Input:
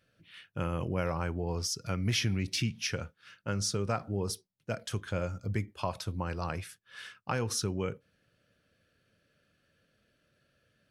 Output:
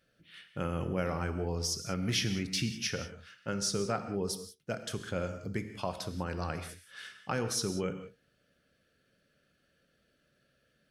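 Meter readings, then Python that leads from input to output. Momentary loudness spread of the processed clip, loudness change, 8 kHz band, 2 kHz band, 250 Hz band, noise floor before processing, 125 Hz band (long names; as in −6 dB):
13 LU, −0.5 dB, +0.5 dB, −0.5 dB, +0.5 dB, −74 dBFS, −3.5 dB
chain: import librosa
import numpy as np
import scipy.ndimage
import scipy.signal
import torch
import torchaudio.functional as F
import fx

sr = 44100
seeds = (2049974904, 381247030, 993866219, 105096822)

y = fx.graphic_eq_31(x, sr, hz=(100, 1000, 2500), db=(-11, -5, -3))
y = fx.rev_gated(y, sr, seeds[0], gate_ms=210, shape='flat', drr_db=8.5)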